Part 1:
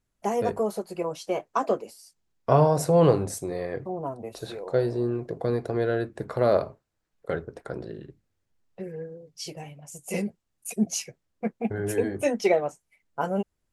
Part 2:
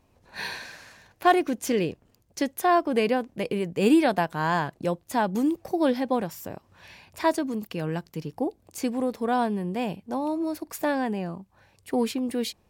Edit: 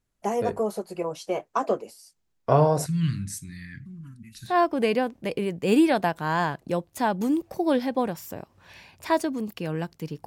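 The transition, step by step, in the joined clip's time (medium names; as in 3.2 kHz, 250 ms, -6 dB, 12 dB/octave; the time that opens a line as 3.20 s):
part 1
2.86–4.57 s: elliptic band-stop 220–1700 Hz, stop band 50 dB
4.51 s: go over to part 2 from 2.65 s, crossfade 0.12 s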